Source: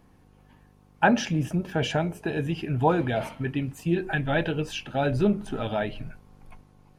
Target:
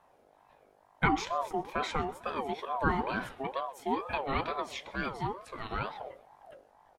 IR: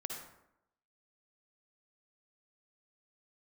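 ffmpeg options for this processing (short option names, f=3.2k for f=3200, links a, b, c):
-filter_complex "[0:a]asettb=1/sr,asplit=3[a][b][c];[a]atrim=end=4.954[d];[b]atrim=start=4.95:end=5.71,asetpts=PTS-STARTPTS,afade=t=in:d=0.004:c=qsin,afade=t=out:st=0.756:d=0.004:c=qsin,highpass=f=450:p=1[e];[c]atrim=start=5.706[f];[d][e]acrossfade=d=0.004:c1=hsin:c2=qsin[g];[g][f]acrossfade=d=0.004:c1=qsin:c2=hsin,aecho=1:1:127|254|381:0.0794|0.0397|0.0199,aeval=exprs='val(0)*sin(2*PI*710*n/s+710*0.25/2.2*sin(2*PI*2.2*n/s))':c=same,volume=-4dB"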